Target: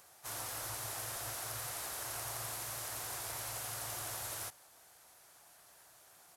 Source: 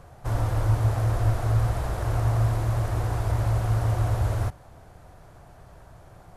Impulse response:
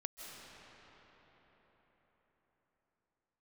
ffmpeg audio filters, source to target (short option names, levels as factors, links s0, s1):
-filter_complex "[0:a]asplit=3[s0][s1][s2];[s1]asetrate=22050,aresample=44100,atempo=2,volume=0.447[s3];[s2]asetrate=52444,aresample=44100,atempo=0.840896,volume=0.316[s4];[s0][s3][s4]amix=inputs=3:normalize=0,aderivative,volume=1.78"